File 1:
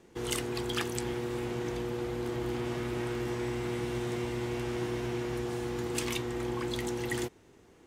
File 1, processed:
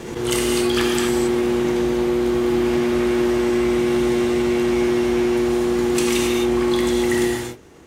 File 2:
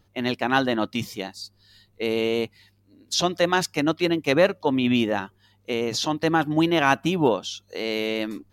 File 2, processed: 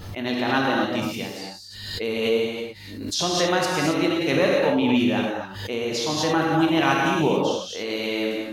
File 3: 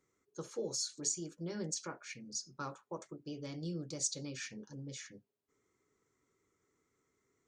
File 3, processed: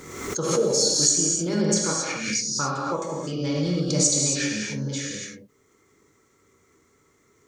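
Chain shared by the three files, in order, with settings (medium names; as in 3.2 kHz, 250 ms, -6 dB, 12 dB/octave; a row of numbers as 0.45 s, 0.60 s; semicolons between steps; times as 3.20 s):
gated-style reverb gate 300 ms flat, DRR -2.5 dB; swell ahead of each attack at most 48 dB/s; peak normalisation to -6 dBFS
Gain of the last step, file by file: +7.5 dB, -4.0 dB, +12.5 dB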